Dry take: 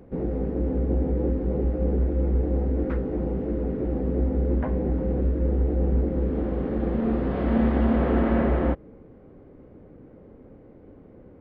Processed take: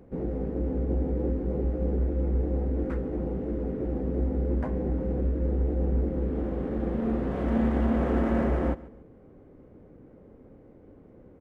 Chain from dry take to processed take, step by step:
running median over 9 samples
repeating echo 142 ms, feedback 29%, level −19 dB
level −3.5 dB

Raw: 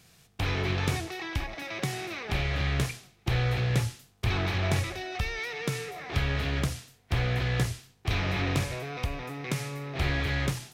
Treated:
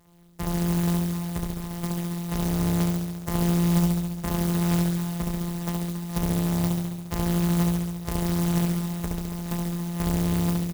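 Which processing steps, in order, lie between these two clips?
samples sorted by size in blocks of 256 samples
comb filter 4.8 ms, depth 46%
flutter between parallel walls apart 11.9 metres, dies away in 1.5 s
converter with an unsteady clock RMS 0.076 ms
level −2.5 dB

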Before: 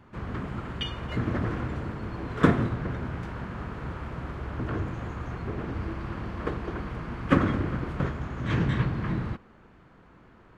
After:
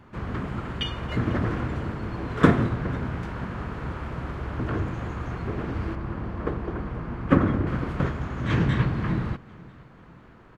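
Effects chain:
0:05.95–0:07.67: high-shelf EQ 2,100 Hz −11 dB
repeating echo 495 ms, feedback 46%, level −23 dB
level +3 dB

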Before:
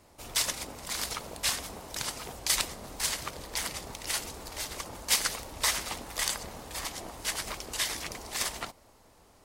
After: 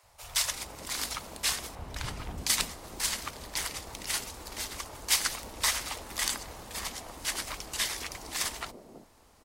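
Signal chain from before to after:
0:01.75–0:02.38: bass and treble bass +12 dB, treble −10 dB
three-band delay without the direct sound highs, lows, mids 30/330 ms, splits 150/540 Hz

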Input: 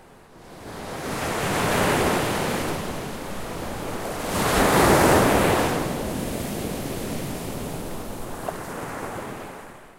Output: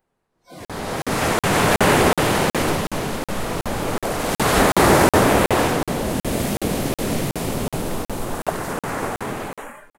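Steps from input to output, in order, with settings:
noise reduction from a noise print of the clip's start 26 dB
automatic gain control gain up to 7 dB
on a send: repeating echo 236 ms, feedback 38%, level −22 dB
on the sum: regular buffer underruns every 0.37 s, samples 2,048, zero, from 0:00.65

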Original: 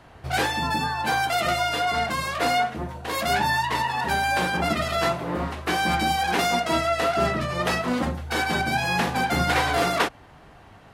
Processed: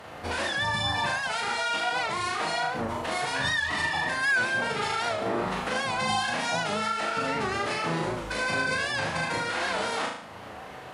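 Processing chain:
high-pass filter 210 Hz 12 dB per octave
downward compressor 6 to 1, threshold −34 dBFS, peak gain reduction 15.5 dB
brickwall limiter −28.5 dBFS, peak gain reduction 6 dB
phase-vocoder pitch shift with formants kept −7 semitones
flutter between parallel walls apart 6.4 metres, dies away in 0.62 s
wow of a warped record 78 rpm, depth 100 cents
level +8 dB

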